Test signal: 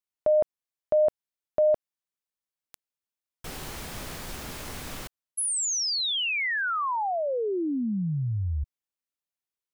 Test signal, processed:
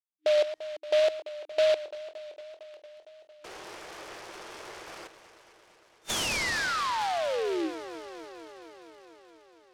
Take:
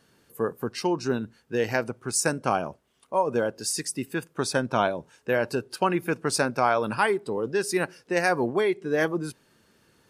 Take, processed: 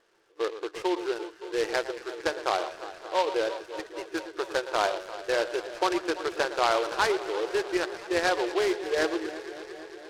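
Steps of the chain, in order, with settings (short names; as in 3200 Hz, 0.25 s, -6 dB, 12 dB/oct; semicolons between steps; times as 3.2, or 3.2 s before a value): on a send: echo with dull and thin repeats by turns 0.114 s, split 1700 Hz, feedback 87%, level -12 dB; on the sum: bit-crush 11-bit; wow and flutter 2.1 Hz 36 cents; FFT band-pass 310–3600 Hz; noise-modulated delay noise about 2600 Hz, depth 0.055 ms; gain -2 dB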